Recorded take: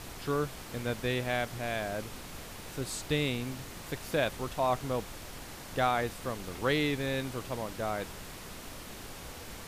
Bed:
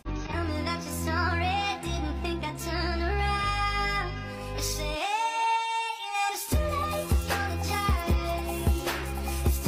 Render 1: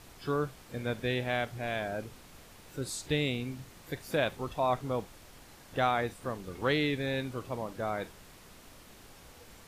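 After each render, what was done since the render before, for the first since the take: noise print and reduce 9 dB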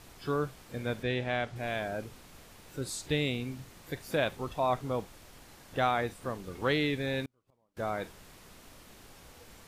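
1.03–1.56 s: distance through air 60 m; 7.25–7.77 s: inverted gate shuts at -32 dBFS, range -37 dB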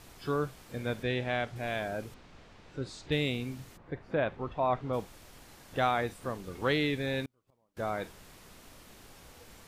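2.14–3.12 s: distance through air 140 m; 3.76–4.92 s: low-pass 1.3 kHz -> 3.3 kHz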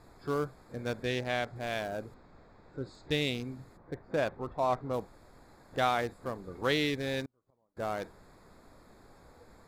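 local Wiener filter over 15 samples; tone controls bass -3 dB, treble +8 dB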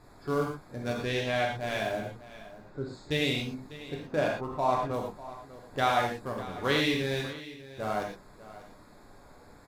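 delay 595 ms -16.5 dB; gated-style reverb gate 140 ms flat, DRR -1 dB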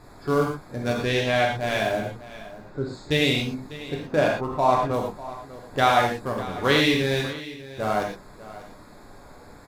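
trim +7 dB

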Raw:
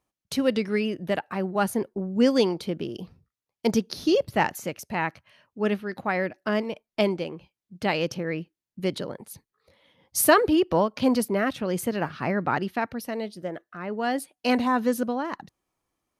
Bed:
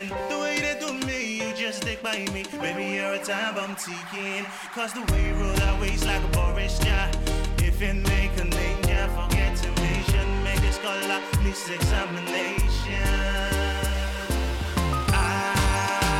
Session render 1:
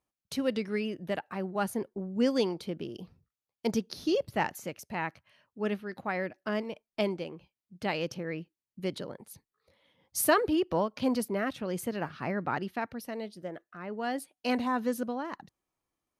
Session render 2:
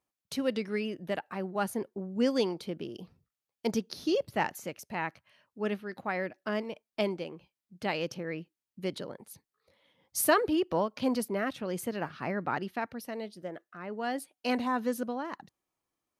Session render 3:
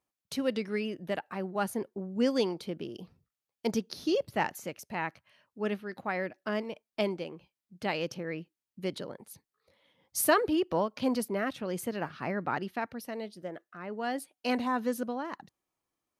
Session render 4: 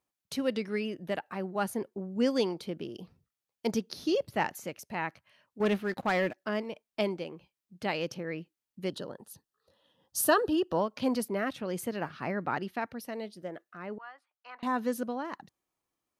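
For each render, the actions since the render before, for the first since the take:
trim -6.5 dB
bass shelf 100 Hz -7 dB
no audible change
5.60–6.37 s: waveshaping leveller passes 2; 8.89–10.80 s: Butterworth band-stop 2.2 kHz, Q 3.3; 13.98–14.63 s: ladder band-pass 1.3 kHz, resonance 60%

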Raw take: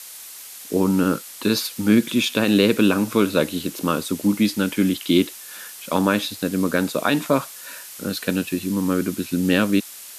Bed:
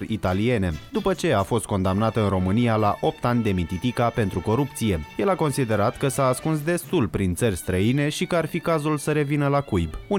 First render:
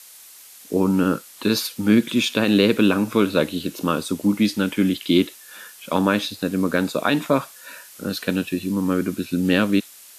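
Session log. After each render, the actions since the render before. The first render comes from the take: noise print and reduce 6 dB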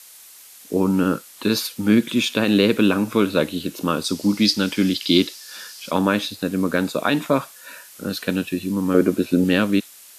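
4.04–5.91 s: peaking EQ 4.9 kHz +14 dB 0.74 oct; 8.94–9.44 s: peaking EQ 530 Hz +11.5 dB 1.8 oct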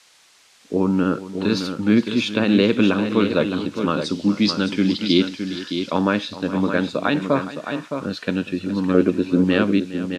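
distance through air 110 m; multi-tap echo 414/615 ms -15/-8 dB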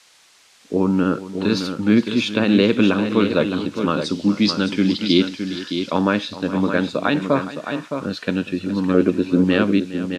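trim +1 dB; peak limiter -3 dBFS, peak gain reduction 1.5 dB

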